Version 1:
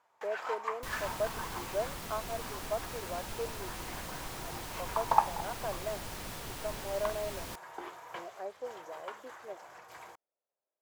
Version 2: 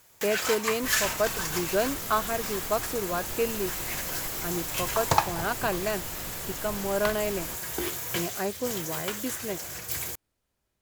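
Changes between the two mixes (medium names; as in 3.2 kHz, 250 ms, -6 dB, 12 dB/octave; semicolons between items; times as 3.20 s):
speech: remove ladder band-pass 690 Hz, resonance 45%; first sound: remove band-pass filter 910 Hz, Q 2.4; second sound: send on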